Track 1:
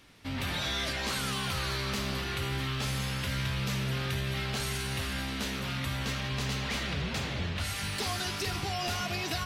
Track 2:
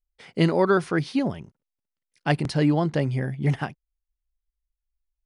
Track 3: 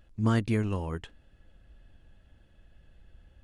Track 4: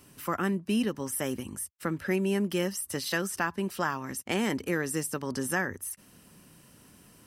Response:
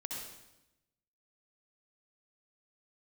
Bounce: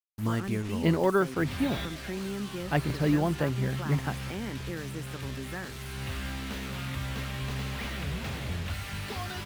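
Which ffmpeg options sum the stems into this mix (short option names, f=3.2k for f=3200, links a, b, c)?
-filter_complex "[0:a]lowshelf=f=110:g=5.5,adelay=1100,volume=-2.5dB[a];[1:a]adelay=450,volume=-4.5dB[b];[2:a]highshelf=f=5k:g=10.5,volume=-4.5dB[c];[3:a]lowshelf=f=230:g=7,volume=-11dB,asplit=2[d][e];[e]apad=whole_len=465577[f];[a][f]sidechaincompress=threshold=-40dB:ratio=8:attack=9.3:release=594[g];[g][b][c][d]amix=inputs=4:normalize=0,acrossover=split=3400[h][i];[i]acompressor=threshold=-50dB:ratio=4:attack=1:release=60[j];[h][j]amix=inputs=2:normalize=0,acrusher=bits=6:mix=0:aa=0.5"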